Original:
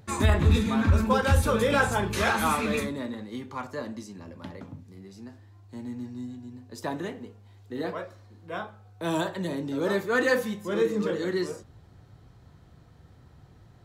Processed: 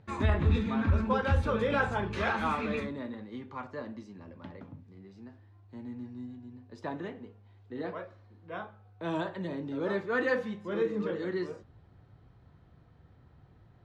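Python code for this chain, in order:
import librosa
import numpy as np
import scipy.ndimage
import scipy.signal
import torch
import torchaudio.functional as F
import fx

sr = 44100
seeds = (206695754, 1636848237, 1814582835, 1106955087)

y = scipy.signal.sosfilt(scipy.signal.butter(2, 3100.0, 'lowpass', fs=sr, output='sos'), x)
y = y * librosa.db_to_amplitude(-5.0)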